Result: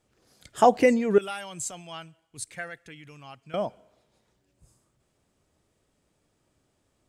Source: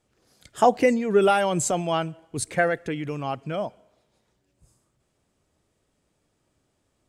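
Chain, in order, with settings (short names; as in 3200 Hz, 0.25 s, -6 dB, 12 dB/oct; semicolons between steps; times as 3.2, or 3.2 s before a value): 1.18–3.54 passive tone stack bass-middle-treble 5-5-5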